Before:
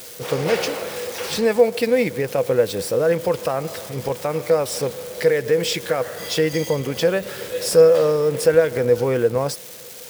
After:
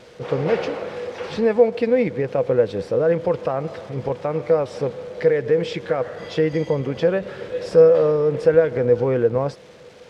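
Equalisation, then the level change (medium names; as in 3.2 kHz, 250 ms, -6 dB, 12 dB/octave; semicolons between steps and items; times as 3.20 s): tape spacing loss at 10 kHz 30 dB; +1.5 dB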